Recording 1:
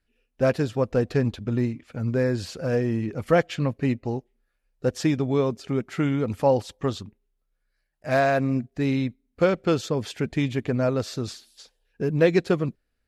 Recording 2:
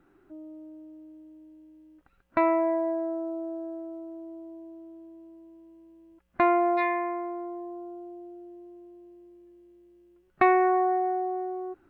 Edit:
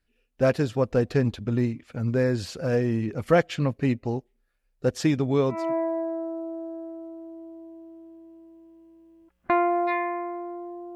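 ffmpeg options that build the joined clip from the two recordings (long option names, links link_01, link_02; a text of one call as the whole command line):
ffmpeg -i cue0.wav -i cue1.wav -filter_complex "[0:a]apad=whole_dur=10.95,atrim=end=10.95,atrim=end=5.74,asetpts=PTS-STARTPTS[link_01];[1:a]atrim=start=2.38:end=7.85,asetpts=PTS-STARTPTS[link_02];[link_01][link_02]acrossfade=duration=0.26:curve1=tri:curve2=tri" out.wav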